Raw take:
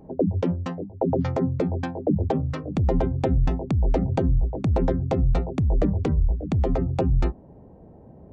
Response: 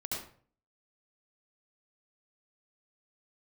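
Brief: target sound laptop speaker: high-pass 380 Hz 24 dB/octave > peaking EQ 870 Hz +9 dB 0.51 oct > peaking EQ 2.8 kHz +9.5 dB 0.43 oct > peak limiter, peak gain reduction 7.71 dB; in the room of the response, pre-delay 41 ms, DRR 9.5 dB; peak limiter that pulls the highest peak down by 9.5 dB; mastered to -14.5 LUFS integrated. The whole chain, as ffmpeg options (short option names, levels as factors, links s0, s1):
-filter_complex "[0:a]alimiter=limit=0.0944:level=0:latency=1,asplit=2[s0][s1];[1:a]atrim=start_sample=2205,adelay=41[s2];[s1][s2]afir=irnorm=-1:irlink=0,volume=0.251[s3];[s0][s3]amix=inputs=2:normalize=0,highpass=f=380:w=0.5412,highpass=f=380:w=1.3066,equalizer=f=870:t=o:w=0.51:g=9,equalizer=f=2800:t=o:w=0.43:g=9.5,volume=14.1,alimiter=limit=1:level=0:latency=1"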